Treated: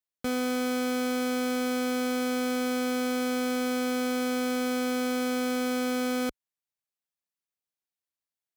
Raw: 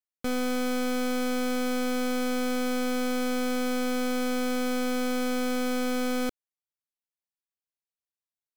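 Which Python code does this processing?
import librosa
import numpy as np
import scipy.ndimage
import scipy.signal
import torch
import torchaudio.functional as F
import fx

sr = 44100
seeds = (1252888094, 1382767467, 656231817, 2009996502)

y = scipy.signal.sosfilt(scipy.signal.butter(2, 43.0, 'highpass', fs=sr, output='sos'), x)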